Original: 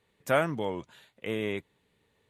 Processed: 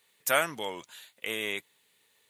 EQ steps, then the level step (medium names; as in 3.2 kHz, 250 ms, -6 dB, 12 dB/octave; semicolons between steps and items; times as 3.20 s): tilt EQ +4.5 dB/octave; 0.0 dB